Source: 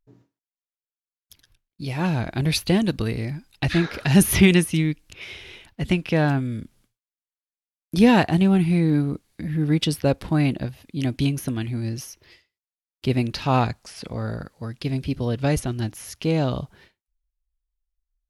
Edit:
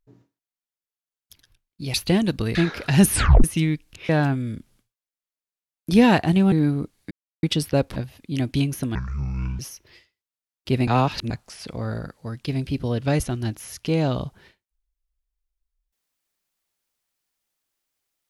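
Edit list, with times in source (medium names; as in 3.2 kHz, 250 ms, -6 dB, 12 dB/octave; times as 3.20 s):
1.94–2.54 s: delete
3.15–3.72 s: delete
4.28 s: tape stop 0.33 s
5.26–6.14 s: delete
8.57–8.83 s: delete
9.42–9.74 s: mute
10.27–10.61 s: delete
11.60–11.96 s: speed 56%
13.24–13.67 s: reverse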